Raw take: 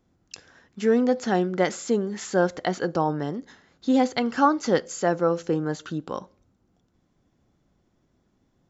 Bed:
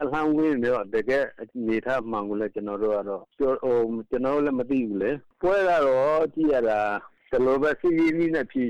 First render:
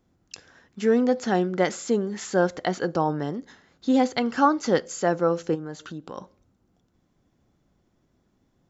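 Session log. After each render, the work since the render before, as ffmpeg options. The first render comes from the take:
ffmpeg -i in.wav -filter_complex "[0:a]asplit=3[link_01][link_02][link_03];[link_01]afade=type=out:start_time=5.54:duration=0.02[link_04];[link_02]acompressor=threshold=-37dB:ratio=2:attack=3.2:release=140:knee=1:detection=peak,afade=type=in:start_time=5.54:duration=0.02,afade=type=out:start_time=6.17:duration=0.02[link_05];[link_03]afade=type=in:start_time=6.17:duration=0.02[link_06];[link_04][link_05][link_06]amix=inputs=3:normalize=0" out.wav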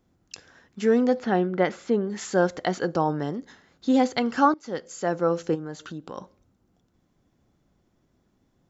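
ffmpeg -i in.wav -filter_complex "[0:a]asettb=1/sr,asplit=3[link_01][link_02][link_03];[link_01]atrim=end=1.194[link_04];[link_02]atrim=start=1.19:end=2.1,asetpts=PTS-STARTPTS,afade=type=in:duration=0.004:curve=qsin,afade=type=out:start_time=0.906:duration=0.004:curve=qsin,lowpass=3000[link_05];[link_03]atrim=start=2.096[link_06];[link_04][link_05]acrossfade=duration=0.004:curve1=hsin:curve2=qsin[link_07];[link_07][link_06]acrossfade=duration=0.004:curve1=qsin:curve2=hsin,asplit=2[link_08][link_09];[link_08]atrim=end=4.54,asetpts=PTS-STARTPTS,afade=type=out:start_time=4.536:duration=0.004:curve=hsin:silence=0.0944061[link_10];[link_09]atrim=start=4.54,asetpts=PTS-STARTPTS,afade=type=in:duration=0.81:silence=0.0944061[link_11];[link_10][link_11]concat=n=2:v=0:a=1" out.wav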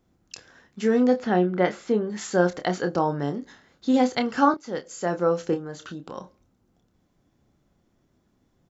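ffmpeg -i in.wav -filter_complex "[0:a]asplit=2[link_01][link_02];[link_02]adelay=28,volume=-8dB[link_03];[link_01][link_03]amix=inputs=2:normalize=0" out.wav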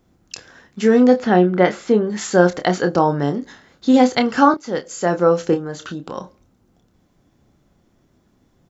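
ffmpeg -i in.wav -af "volume=7.5dB,alimiter=limit=-1dB:level=0:latency=1" out.wav

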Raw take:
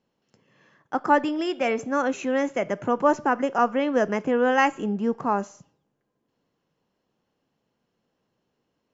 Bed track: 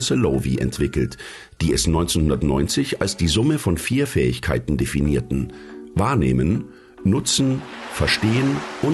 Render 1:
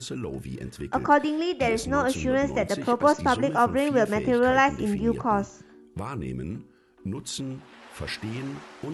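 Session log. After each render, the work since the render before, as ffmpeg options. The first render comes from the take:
ffmpeg -i in.wav -i bed.wav -filter_complex "[1:a]volume=-14.5dB[link_01];[0:a][link_01]amix=inputs=2:normalize=0" out.wav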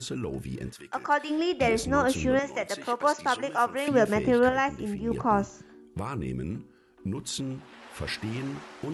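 ffmpeg -i in.wav -filter_complex "[0:a]asplit=3[link_01][link_02][link_03];[link_01]afade=type=out:start_time=0.72:duration=0.02[link_04];[link_02]highpass=frequency=1300:poles=1,afade=type=in:start_time=0.72:duration=0.02,afade=type=out:start_time=1.29:duration=0.02[link_05];[link_03]afade=type=in:start_time=1.29:duration=0.02[link_06];[link_04][link_05][link_06]amix=inputs=3:normalize=0,asettb=1/sr,asplit=3[link_07][link_08][link_09];[link_07]atrim=end=2.394[link_10];[link_08]atrim=start=2.39:end=3.88,asetpts=PTS-STARTPTS,afade=type=in:duration=0.004:curve=qsin,afade=type=out:start_time=1.486:duration=0.004:curve=qsin,highpass=frequency=930:poles=1[link_11];[link_09]atrim=start=3.876[link_12];[link_10][link_11]acrossfade=duration=0.004:curve1=hsin:curve2=qsin[link_13];[link_13][link_12]acrossfade=duration=0.004:curve1=qsin:curve2=hsin,asplit=3[link_14][link_15][link_16];[link_14]atrim=end=4.492[link_17];[link_15]atrim=start=4.488:end=5.112,asetpts=PTS-STARTPTS,volume=-6dB[link_18];[link_16]atrim=start=5.108[link_19];[link_17][link_18]acrossfade=duration=0.004:curve1=hsin:curve2=hsin[link_20];[link_20][link_19]acrossfade=duration=0.004:curve1=hsin:curve2=hsin" out.wav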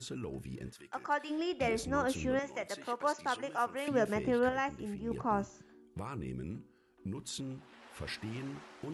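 ffmpeg -i in.wav -af "volume=-8dB" out.wav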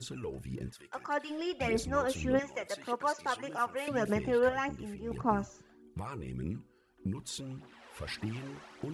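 ffmpeg -i in.wav -af "aphaser=in_gain=1:out_gain=1:delay=2.4:decay=0.49:speed=1.7:type=triangular" out.wav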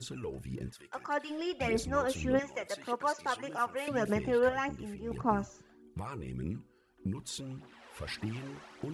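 ffmpeg -i in.wav -af anull out.wav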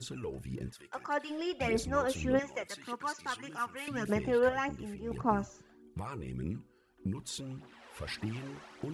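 ffmpeg -i in.wav -filter_complex "[0:a]asettb=1/sr,asplit=3[link_01][link_02][link_03];[link_01]atrim=end=2.644[link_04];[link_02]atrim=start=2.64:end=4.09,asetpts=PTS-STARTPTS,afade=type=in:duration=0.004:curve=qsin,afade=type=out:start_time=1.446:duration=0.004:curve=qsin,equalizer=frequency=610:width_type=o:width=0.96:gain=-13.5[link_05];[link_03]atrim=start=4.086[link_06];[link_04][link_05]acrossfade=duration=0.004:curve1=hsin:curve2=qsin[link_07];[link_07][link_06]acrossfade=duration=0.004:curve1=qsin:curve2=hsin" out.wav

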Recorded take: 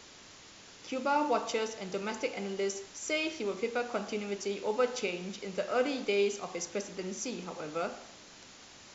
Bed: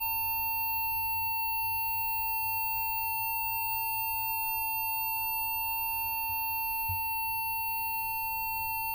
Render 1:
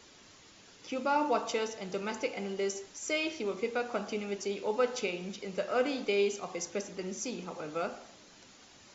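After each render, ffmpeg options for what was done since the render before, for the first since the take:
ffmpeg -i in.wav -af "afftdn=noise_reduction=6:noise_floor=-53" out.wav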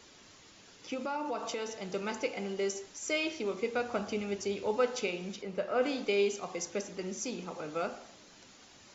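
ffmpeg -i in.wav -filter_complex "[0:a]asettb=1/sr,asplit=3[link_01][link_02][link_03];[link_01]atrim=end=0.944[link_04];[link_02]atrim=start=0.94:end=1.8,asetpts=PTS-STARTPTS,afade=type=in:duration=0.004:curve=qsin,afade=type=out:start_time=0.856:duration=0.004:curve=qsin,acompressor=threshold=-33dB:ratio=3:attack=3.2:release=140:knee=1:detection=peak[link_05];[link_03]atrim=start=1.796[link_06];[link_04][link_05]acrossfade=duration=0.004:curve1=hsin:curve2=qsin[link_07];[link_07][link_06]acrossfade=duration=0.004:curve1=qsin:curve2=hsin,asettb=1/sr,asplit=3[link_08][link_09][link_10];[link_08]atrim=end=3.744[link_11];[link_09]atrim=start=3.74:end=4.78,asetpts=PTS-STARTPTS,afade=type=in:duration=0.004:curve=qsin,afade=type=out:start_time=1.036:duration=0.004:curve=qsin,equalizer=frequency=81:width_type=o:width=1.1:gain=14[link_12];[link_10]atrim=start=4.776[link_13];[link_11][link_12]acrossfade=duration=0.004:curve1=hsin:curve2=qsin[link_14];[link_14][link_13]acrossfade=duration=0.004:curve1=qsin:curve2=hsin,asplit=3[link_15][link_16][link_17];[link_15]afade=type=out:start_time=5.41:duration=0.02[link_18];[link_16]aemphasis=mode=reproduction:type=75kf,afade=type=in:start_time=5.41:duration=0.02,afade=type=out:start_time=5.81:duration=0.02[link_19];[link_17]afade=type=in:start_time=5.81:duration=0.02[link_20];[link_18][link_19][link_20]amix=inputs=3:normalize=0" out.wav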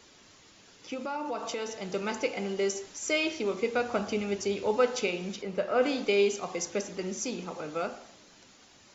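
ffmpeg -i in.wav -af "dynaudnorm=framelen=240:gausssize=13:maxgain=4dB" out.wav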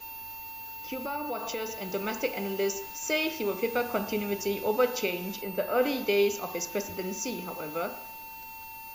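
ffmpeg -i in.wav -i bed.wav -filter_complex "[1:a]volume=-10.5dB[link_01];[0:a][link_01]amix=inputs=2:normalize=0" out.wav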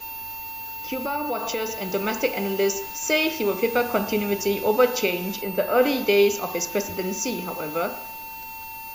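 ffmpeg -i in.wav -af "volume=6.5dB" out.wav

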